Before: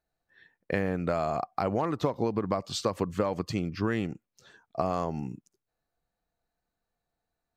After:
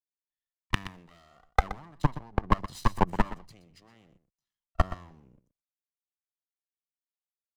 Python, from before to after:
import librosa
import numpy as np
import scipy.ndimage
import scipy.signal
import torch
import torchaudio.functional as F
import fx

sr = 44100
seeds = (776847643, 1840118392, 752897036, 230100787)

p1 = fx.lower_of_two(x, sr, delay_ms=1.0)
p2 = fx.low_shelf(p1, sr, hz=85.0, db=8.5)
p3 = fx.transient(p2, sr, attack_db=5, sustain_db=1)
p4 = fx.level_steps(p3, sr, step_db=23)
p5 = p4 + fx.echo_single(p4, sr, ms=124, db=-11.5, dry=0)
p6 = fx.band_widen(p5, sr, depth_pct=100)
y = F.gain(torch.from_numpy(p6), 1.5).numpy()